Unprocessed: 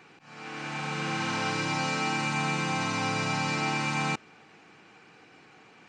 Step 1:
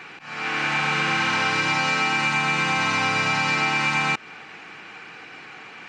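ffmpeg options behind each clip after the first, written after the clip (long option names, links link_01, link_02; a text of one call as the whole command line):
ffmpeg -i in.wav -af "acontrast=65,equalizer=frequency=2000:width=0.5:gain=10,acompressor=threshold=-19dB:ratio=6" out.wav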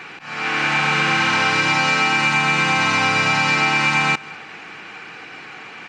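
ffmpeg -i in.wav -af "aecho=1:1:197:0.075,volume=4.5dB" out.wav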